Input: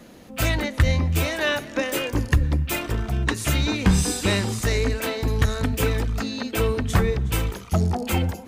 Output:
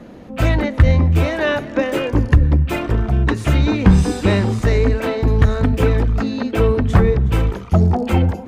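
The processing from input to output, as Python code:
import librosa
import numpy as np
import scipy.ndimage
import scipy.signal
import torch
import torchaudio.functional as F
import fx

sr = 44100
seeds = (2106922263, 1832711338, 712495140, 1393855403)

p1 = 10.0 ** (-22.5 / 20.0) * np.tanh(x / 10.0 ** (-22.5 / 20.0))
p2 = x + F.gain(torch.from_numpy(p1), -10.0).numpy()
p3 = fx.lowpass(p2, sr, hz=1100.0, slope=6)
y = F.gain(torch.from_numpy(p3), 6.5).numpy()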